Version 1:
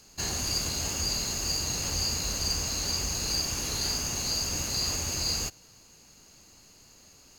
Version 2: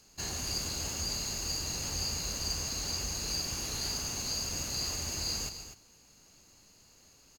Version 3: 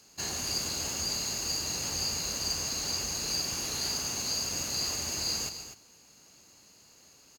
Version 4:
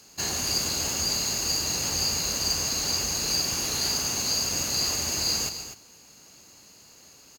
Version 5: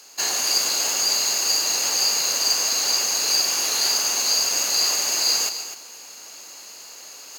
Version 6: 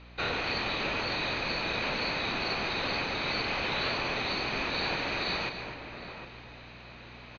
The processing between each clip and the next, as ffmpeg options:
-af "aecho=1:1:145.8|247.8:0.251|0.282,volume=0.531"
-af "highpass=f=160:p=1,volume=1.41"
-af "equalizer=f=15000:w=2.4:g=5,volume=1.88"
-af "highpass=520,areverse,acompressor=mode=upward:threshold=0.0112:ratio=2.5,areverse,volume=2"
-filter_complex "[0:a]highpass=f=220:t=q:w=0.5412,highpass=f=220:t=q:w=1.307,lowpass=f=3500:t=q:w=0.5176,lowpass=f=3500:t=q:w=0.7071,lowpass=f=3500:t=q:w=1.932,afreqshift=-290,aeval=exprs='val(0)+0.00316*(sin(2*PI*60*n/s)+sin(2*PI*2*60*n/s)/2+sin(2*PI*3*60*n/s)/3+sin(2*PI*4*60*n/s)/4+sin(2*PI*5*60*n/s)/5)':c=same,asplit=2[s0][s1];[s1]adelay=758,volume=0.355,highshelf=f=4000:g=-17.1[s2];[s0][s2]amix=inputs=2:normalize=0"

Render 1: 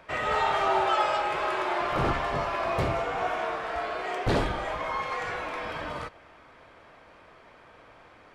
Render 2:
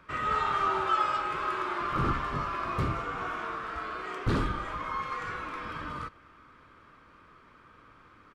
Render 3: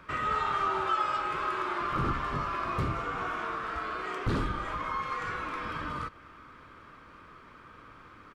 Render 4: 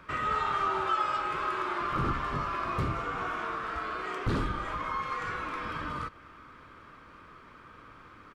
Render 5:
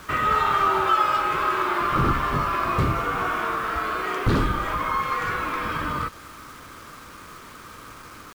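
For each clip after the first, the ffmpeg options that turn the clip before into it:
-af "firequalizer=gain_entry='entry(270,0);entry(700,-16);entry(1200,3);entry(1800,-6)':delay=0.05:min_phase=1"
-af "acompressor=threshold=0.00891:ratio=1.5,volume=1.68"
-af anull
-af "acrusher=bits=8:mix=0:aa=0.000001,volume=2.66"

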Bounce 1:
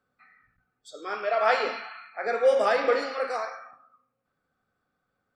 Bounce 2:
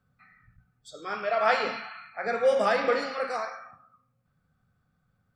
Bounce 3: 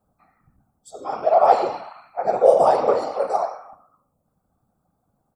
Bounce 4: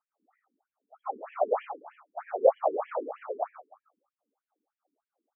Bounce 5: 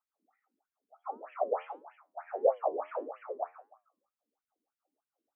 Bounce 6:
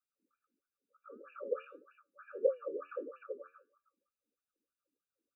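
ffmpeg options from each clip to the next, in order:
-af "lowshelf=f=220:t=q:w=1.5:g=13"
-af "afftfilt=real='hypot(re,im)*cos(2*PI*random(0))':imag='hypot(re,im)*sin(2*PI*random(1))':win_size=512:overlap=0.75,firequalizer=gain_entry='entry(110,0);entry(790,14);entry(1600,-11);entry(8200,8)':delay=0.05:min_phase=1,volume=1.88"
-af "afftfilt=real='re*between(b*sr/1024,300*pow(2400/300,0.5+0.5*sin(2*PI*3.2*pts/sr))/1.41,300*pow(2400/300,0.5+0.5*sin(2*PI*3.2*pts/sr))*1.41)':imag='im*between(b*sr/1024,300*pow(2400/300,0.5+0.5*sin(2*PI*3.2*pts/sr))/1.41,300*pow(2400/300,0.5+0.5*sin(2*PI*3.2*pts/sr))*1.41)':win_size=1024:overlap=0.75,volume=0.631"
-af "flanger=delay=8.5:depth=4:regen=-75:speed=1.6:shape=sinusoidal"
-af "afftfilt=real='re*eq(mod(floor(b*sr/1024/580),2),0)':imag='im*eq(mod(floor(b*sr/1024/580),2),0)':win_size=1024:overlap=0.75,volume=0.794"

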